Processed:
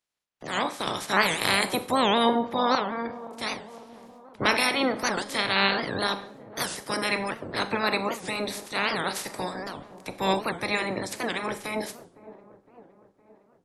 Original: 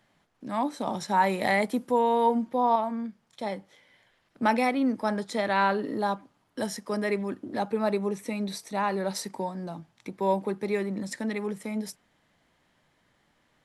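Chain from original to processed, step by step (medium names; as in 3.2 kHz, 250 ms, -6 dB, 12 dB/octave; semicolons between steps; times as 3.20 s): spectral peaks clipped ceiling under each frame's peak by 26 dB; gate with hold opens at -54 dBFS; spectral gate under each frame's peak -25 dB strong; feedback echo behind a low-pass 512 ms, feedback 57%, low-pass 820 Hz, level -15.5 dB; Schroeder reverb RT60 0.47 s, combs from 30 ms, DRR 12 dB; warped record 78 rpm, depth 250 cents; trim +1 dB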